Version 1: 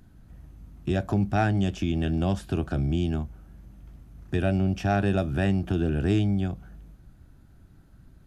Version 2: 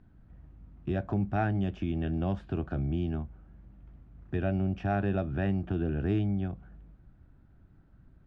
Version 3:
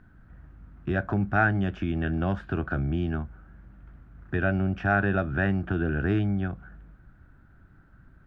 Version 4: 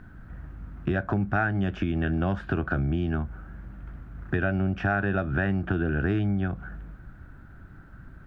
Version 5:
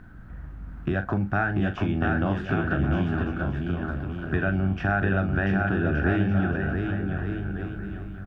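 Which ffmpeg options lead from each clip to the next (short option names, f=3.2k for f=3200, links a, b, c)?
-af "lowpass=2.3k,volume=-5dB"
-af "equalizer=f=1.5k:t=o:w=0.76:g=12.5,volume=3dB"
-af "acompressor=threshold=-33dB:ratio=3,volume=8dB"
-filter_complex "[0:a]asplit=2[a][b];[b]adelay=41,volume=-10dB[c];[a][c]amix=inputs=2:normalize=0,asplit=2[d][e];[e]aecho=0:1:690|1173|1511|1748|1913:0.631|0.398|0.251|0.158|0.1[f];[d][f]amix=inputs=2:normalize=0"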